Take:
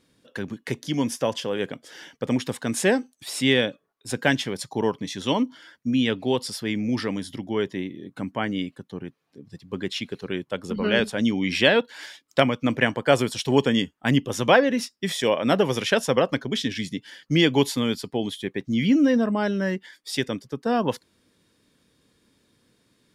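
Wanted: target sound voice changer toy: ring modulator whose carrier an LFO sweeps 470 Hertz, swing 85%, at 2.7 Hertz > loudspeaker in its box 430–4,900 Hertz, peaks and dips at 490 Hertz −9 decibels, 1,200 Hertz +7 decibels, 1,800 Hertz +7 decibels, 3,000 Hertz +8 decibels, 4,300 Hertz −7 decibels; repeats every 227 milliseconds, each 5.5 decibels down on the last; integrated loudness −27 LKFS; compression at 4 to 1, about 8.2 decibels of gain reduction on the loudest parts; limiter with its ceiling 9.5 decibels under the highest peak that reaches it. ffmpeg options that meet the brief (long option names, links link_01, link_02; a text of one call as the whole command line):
ffmpeg -i in.wav -af "acompressor=threshold=-22dB:ratio=4,alimiter=limit=-17dB:level=0:latency=1,aecho=1:1:227|454|681|908|1135|1362|1589:0.531|0.281|0.149|0.079|0.0419|0.0222|0.0118,aeval=exprs='val(0)*sin(2*PI*470*n/s+470*0.85/2.7*sin(2*PI*2.7*n/s))':channel_layout=same,highpass=430,equalizer=frequency=490:width_type=q:width=4:gain=-9,equalizer=frequency=1200:width_type=q:width=4:gain=7,equalizer=frequency=1800:width_type=q:width=4:gain=7,equalizer=frequency=3000:width_type=q:width=4:gain=8,equalizer=frequency=4300:width_type=q:width=4:gain=-7,lowpass=frequency=4900:width=0.5412,lowpass=frequency=4900:width=1.3066,volume=3.5dB" out.wav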